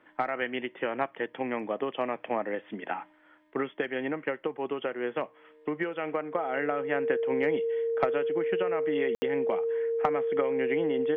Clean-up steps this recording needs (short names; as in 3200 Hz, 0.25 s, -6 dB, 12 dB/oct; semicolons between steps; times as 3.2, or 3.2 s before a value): notch 460 Hz, Q 30; room tone fill 9.15–9.22